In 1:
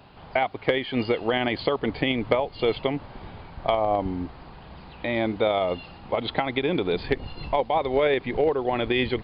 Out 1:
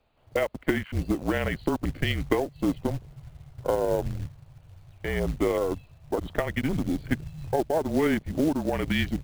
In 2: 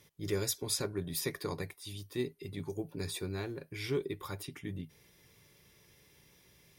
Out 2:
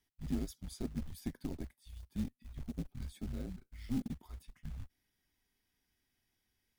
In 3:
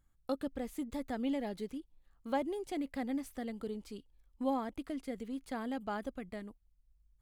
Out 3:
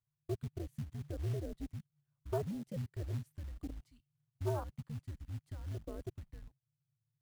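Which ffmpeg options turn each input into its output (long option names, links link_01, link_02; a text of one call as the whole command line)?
ffmpeg -i in.wav -af "afwtdn=0.0282,afreqshift=-160,acrusher=bits=5:mode=log:mix=0:aa=0.000001,volume=-2dB" out.wav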